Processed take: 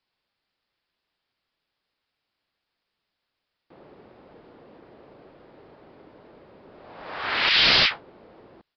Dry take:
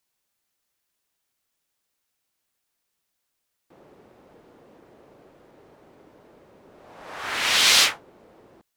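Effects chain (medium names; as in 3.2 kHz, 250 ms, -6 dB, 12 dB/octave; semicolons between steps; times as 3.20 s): 7.49–7.91 s: Butterworth band-pass 3.6 kHz, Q 0.54; integer overflow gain 11 dB; resampled via 11.025 kHz; trim +2.5 dB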